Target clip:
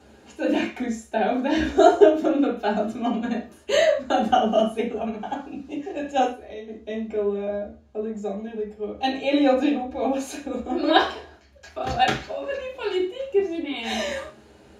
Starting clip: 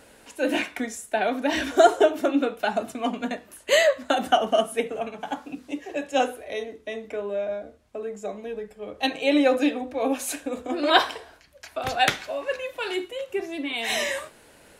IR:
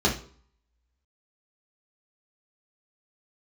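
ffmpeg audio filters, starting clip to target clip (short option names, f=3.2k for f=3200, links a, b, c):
-filter_complex "[0:a]asettb=1/sr,asplit=3[a][b][c];[a]atrim=end=6.274[d];[b]atrim=start=6.27:end=6.68,asetpts=PTS-STARTPTS,afade=t=in:d=0.004:c=qsin,afade=t=out:st=0.406:d=0.004:c=qsin,acompressor=threshold=-37dB:ratio=6[e];[c]atrim=start=6.676[f];[d][e]acrossfade=d=0.004:c1=hsin:c2=qsin[g];[g][f]acrossfade=d=0.004:c1=qsin:c2=hsin[h];[1:a]atrim=start_sample=2205,atrim=end_sample=6174[i];[h][i]afir=irnorm=-1:irlink=0,volume=-15dB"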